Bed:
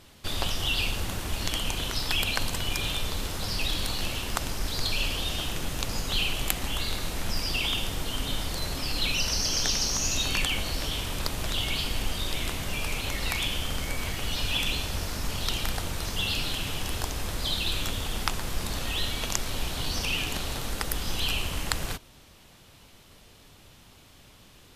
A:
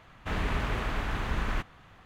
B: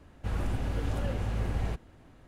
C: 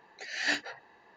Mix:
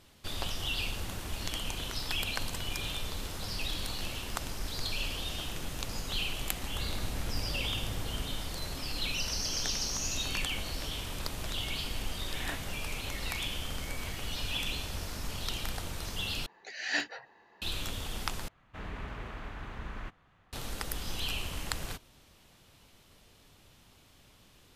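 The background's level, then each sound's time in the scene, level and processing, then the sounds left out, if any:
bed -6.5 dB
6.50 s: add B -8.5 dB
12.00 s: add C -8.5 dB + decimation joined by straight lines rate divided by 8×
16.46 s: replace with C -2 dB
18.48 s: replace with A -10.5 dB + treble shelf 4.7 kHz -4.5 dB

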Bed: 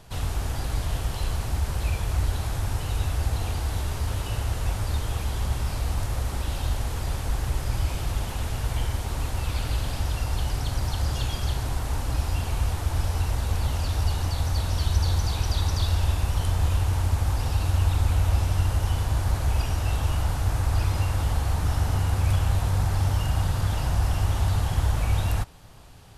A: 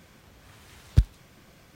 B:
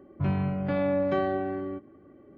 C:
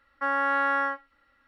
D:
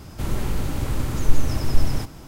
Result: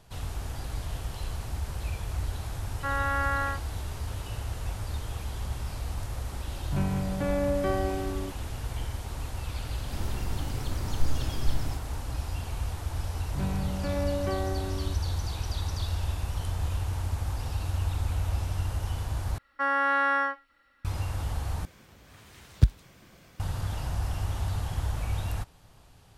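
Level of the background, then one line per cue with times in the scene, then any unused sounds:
bed -7 dB
2.62 s: add C -4 dB
6.52 s: add B -2 dB
9.72 s: add D -10 dB
13.15 s: add B -5 dB
19.38 s: replace with C -1 dB + treble shelf 2.8 kHz +6 dB
21.65 s: replace with A -0.5 dB

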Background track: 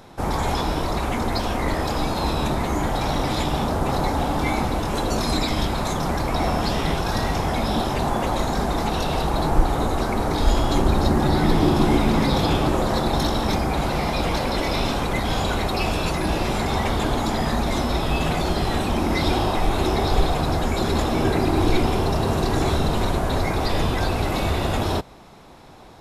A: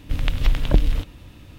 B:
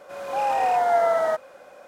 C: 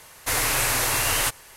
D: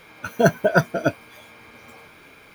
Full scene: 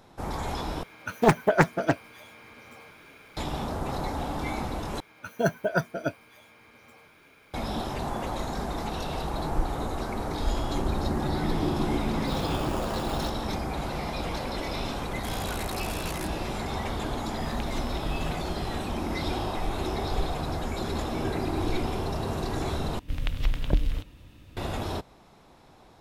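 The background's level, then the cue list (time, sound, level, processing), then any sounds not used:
background track -9 dB
0.83 s: replace with D -3 dB + loudspeaker Doppler distortion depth 0.77 ms
5.00 s: replace with D -8.5 dB
12.00 s: add C -13.5 dB + sample-and-hold 22×
14.97 s: add C -11.5 dB + transformer saturation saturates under 1 kHz
17.32 s: add A -17 dB + tape noise reduction on one side only encoder only
22.99 s: replace with A -7 dB
not used: B

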